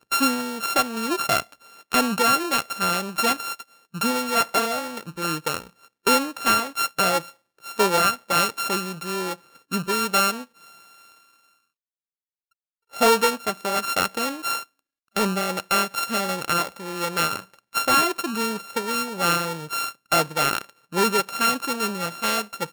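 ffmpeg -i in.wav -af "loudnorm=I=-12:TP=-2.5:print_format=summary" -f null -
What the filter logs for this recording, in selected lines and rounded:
Input Integrated:    -23.0 LUFS
Input True Peak:      -7.5 dBTP
Input LRA:             3.0 LU
Input Threshold:     -33.5 LUFS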